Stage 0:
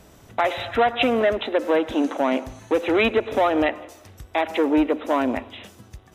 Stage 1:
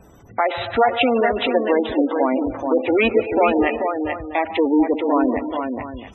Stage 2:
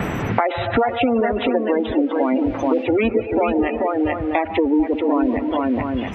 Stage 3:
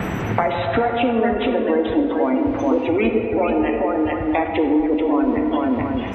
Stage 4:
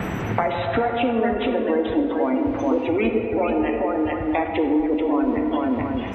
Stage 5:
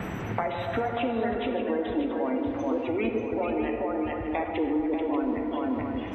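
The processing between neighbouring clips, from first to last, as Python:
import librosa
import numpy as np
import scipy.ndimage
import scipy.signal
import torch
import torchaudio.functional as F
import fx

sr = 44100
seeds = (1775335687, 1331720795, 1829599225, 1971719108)

y1 = fx.notch(x, sr, hz=620.0, q=14.0)
y1 = fx.echo_multitap(y1, sr, ms=(148, 227, 353, 434, 684), db=(-14.5, -18.5, -19.0, -5.5, -13.5))
y1 = fx.spec_gate(y1, sr, threshold_db=-20, keep='strong')
y1 = y1 * 10.0 ** (2.5 / 20.0)
y2 = fx.low_shelf(y1, sr, hz=260.0, db=11.0)
y2 = fx.dmg_noise_band(y2, sr, seeds[0], low_hz=310.0, high_hz=2500.0, level_db=-51.0)
y2 = fx.band_squash(y2, sr, depth_pct=100)
y2 = y2 * 10.0 ** (-4.5 / 20.0)
y3 = fx.rev_plate(y2, sr, seeds[1], rt60_s=2.3, hf_ratio=0.45, predelay_ms=0, drr_db=4.5)
y3 = y3 * 10.0 ** (-1.5 / 20.0)
y4 = fx.quant_float(y3, sr, bits=8)
y4 = y4 * 10.0 ** (-2.5 / 20.0)
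y5 = y4 + 10.0 ** (-9.5 / 20.0) * np.pad(y4, (int(586 * sr / 1000.0), 0))[:len(y4)]
y5 = y5 * 10.0 ** (-7.0 / 20.0)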